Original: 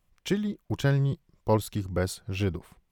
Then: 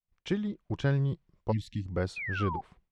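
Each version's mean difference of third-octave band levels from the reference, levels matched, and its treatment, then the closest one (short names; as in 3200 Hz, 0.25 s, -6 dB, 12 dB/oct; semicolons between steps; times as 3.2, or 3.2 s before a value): 3.5 dB: spectral delete 1.51–1.86, 310–1700 Hz; expander -58 dBFS; painted sound fall, 2.16–2.61, 760–2600 Hz -32 dBFS; air absorption 120 m; gain -3 dB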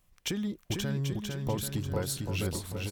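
9.5 dB: high shelf 4700 Hz +6.5 dB; limiter -20 dBFS, peak gain reduction 9 dB; compressor 3:1, threshold -33 dBFS, peak gain reduction 7.5 dB; on a send: bouncing-ball echo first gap 0.45 s, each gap 0.75×, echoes 5; on the sum: gain +2 dB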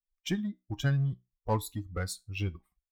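6.5 dB: per-bin expansion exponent 2; dynamic EQ 420 Hz, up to -7 dB, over -42 dBFS, Q 1.3; in parallel at -6 dB: hard clip -30.5 dBFS, distortion -7 dB; on the sum: resonator 62 Hz, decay 0.23 s, harmonics all, mix 40%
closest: first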